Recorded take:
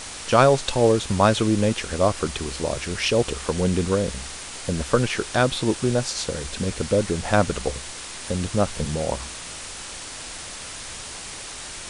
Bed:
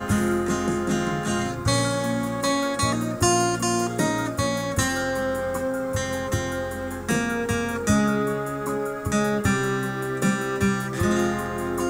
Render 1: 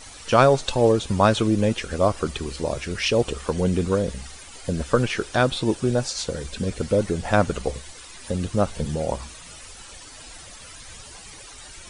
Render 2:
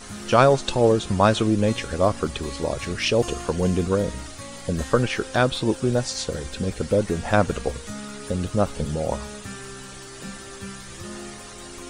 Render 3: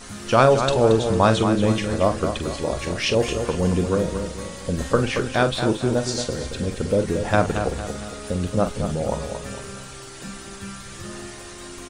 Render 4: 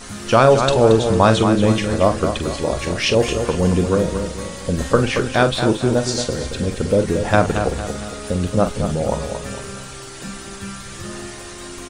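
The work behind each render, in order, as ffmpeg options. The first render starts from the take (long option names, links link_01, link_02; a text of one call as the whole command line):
ffmpeg -i in.wav -af "afftdn=noise_reduction=12:noise_floor=-36" out.wav
ffmpeg -i in.wav -i bed.wav -filter_complex "[1:a]volume=-15.5dB[link_01];[0:a][link_01]amix=inputs=2:normalize=0" out.wav
ffmpeg -i in.wav -filter_complex "[0:a]asplit=2[link_01][link_02];[link_02]adelay=45,volume=-10dB[link_03];[link_01][link_03]amix=inputs=2:normalize=0,asplit=2[link_04][link_05];[link_05]adelay=227,lowpass=frequency=3700:poles=1,volume=-7.5dB,asplit=2[link_06][link_07];[link_07]adelay=227,lowpass=frequency=3700:poles=1,volume=0.43,asplit=2[link_08][link_09];[link_09]adelay=227,lowpass=frequency=3700:poles=1,volume=0.43,asplit=2[link_10][link_11];[link_11]adelay=227,lowpass=frequency=3700:poles=1,volume=0.43,asplit=2[link_12][link_13];[link_13]adelay=227,lowpass=frequency=3700:poles=1,volume=0.43[link_14];[link_06][link_08][link_10][link_12][link_14]amix=inputs=5:normalize=0[link_15];[link_04][link_15]amix=inputs=2:normalize=0" out.wav
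ffmpeg -i in.wav -af "volume=4dB,alimiter=limit=-1dB:level=0:latency=1" out.wav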